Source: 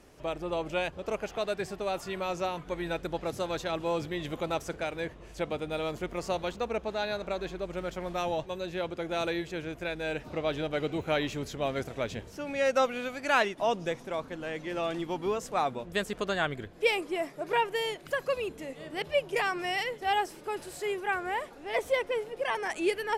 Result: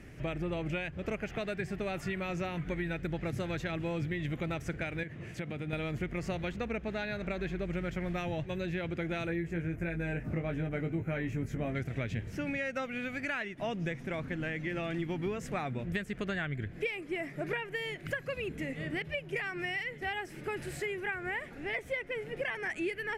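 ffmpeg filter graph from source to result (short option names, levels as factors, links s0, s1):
-filter_complex "[0:a]asettb=1/sr,asplit=3[s0][s1][s2];[s0]atrim=end=5.034[s3];[s1]atrim=start=5.03:end=5.73,asetpts=PTS-STARTPTS,afade=t=in:d=0.004:c=qsin,afade=t=out:st=0.696:d=0.004:c=qsin,highpass=f=90:w=0.5412,highpass=f=90:w=1.3066,acompressor=threshold=0.00708:ratio=2.5:attack=3.2:release=140:knee=1:detection=peak[s4];[s2]atrim=start=5.726[s5];[s3][s4]acrossfade=d=0.004:c1=hsin:c2=qsin[s6];[s6][s5]acrossfade=d=0.004:c1=qsin:c2=hsin,asettb=1/sr,asplit=3[s7][s8][s9];[s7]atrim=end=9.274[s10];[s8]atrim=start=9.27:end=11.75,asetpts=PTS-STARTPTS,afade=t=in:d=0.004:c=qsin,afade=t=out:st=2.476:d=0.004:c=qsin,equalizer=f=3700:w=1:g=-13,asplit=2[s11][s12];[s12]adelay=18,volume=0.562[s13];[s11][s13]amix=inputs=2:normalize=0,atrim=end_sample=109368[s14];[s9]atrim=start=11.746[s15];[s10][s14]acrossfade=d=0.004:c1=hsin:c2=qsin[s16];[s16][s15]acrossfade=d=0.004:c1=qsin:c2=hsin,equalizer=f=125:t=o:w=1:g=8,equalizer=f=500:t=o:w=1:g=-6,equalizer=f=1000:t=o:w=1:g=-12,equalizer=f=2000:t=o:w=1:g=10,equalizer=f=4000:t=o:w=1:g=-4,acompressor=threshold=0.0126:ratio=6,highshelf=f=2700:g=-10.5,volume=2.37"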